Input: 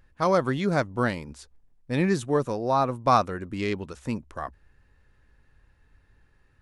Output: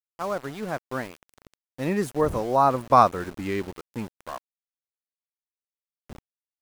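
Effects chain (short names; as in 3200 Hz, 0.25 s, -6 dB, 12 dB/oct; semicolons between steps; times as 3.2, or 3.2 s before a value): wind noise 150 Hz -43 dBFS; Doppler pass-by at 2.87, 22 m/s, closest 18 m; EQ curve 120 Hz 0 dB, 1000 Hz +5 dB, 4500 Hz -4 dB, 11000 Hz +6 dB; sample gate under -37 dBFS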